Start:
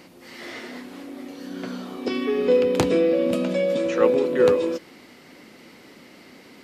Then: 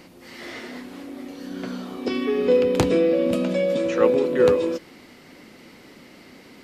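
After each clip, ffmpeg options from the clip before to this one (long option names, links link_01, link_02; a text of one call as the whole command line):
ffmpeg -i in.wav -af "lowshelf=frequency=86:gain=9.5" out.wav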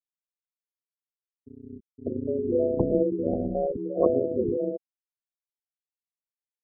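ffmpeg -i in.wav -af "afftfilt=real='re*gte(hypot(re,im),0.282)':imag='im*gte(hypot(re,im),0.282)':win_size=1024:overlap=0.75,tremolo=f=150:d=0.919,afftfilt=real='re*(1-between(b*sr/1024,630*pow(2200/630,0.5+0.5*sin(2*PI*1.5*pts/sr))/1.41,630*pow(2200/630,0.5+0.5*sin(2*PI*1.5*pts/sr))*1.41))':imag='im*(1-between(b*sr/1024,630*pow(2200/630,0.5+0.5*sin(2*PI*1.5*pts/sr))/1.41,630*pow(2200/630,0.5+0.5*sin(2*PI*1.5*pts/sr))*1.41))':win_size=1024:overlap=0.75" out.wav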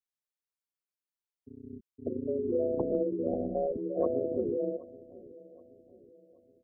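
ffmpeg -i in.wav -filter_complex "[0:a]acrossover=split=220|530[link_01][link_02][link_03];[link_01]acompressor=threshold=-41dB:ratio=4[link_04];[link_02]acompressor=threshold=-28dB:ratio=4[link_05];[link_03]acompressor=threshold=-29dB:ratio=4[link_06];[link_04][link_05][link_06]amix=inputs=3:normalize=0,asplit=2[link_07][link_08];[link_08]adelay=775,lowpass=frequency=900:poles=1,volume=-19dB,asplit=2[link_09][link_10];[link_10]adelay=775,lowpass=frequency=900:poles=1,volume=0.49,asplit=2[link_11][link_12];[link_12]adelay=775,lowpass=frequency=900:poles=1,volume=0.49,asplit=2[link_13][link_14];[link_14]adelay=775,lowpass=frequency=900:poles=1,volume=0.49[link_15];[link_07][link_09][link_11][link_13][link_15]amix=inputs=5:normalize=0,volume=-2.5dB" out.wav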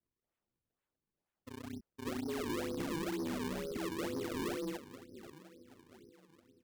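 ffmpeg -i in.wav -af "asuperstop=centerf=770:order=4:qfactor=0.61,acrusher=samples=38:mix=1:aa=0.000001:lfo=1:lforange=60.8:lforate=2.1,asoftclip=type=tanh:threshold=-35.5dB,volume=2dB" out.wav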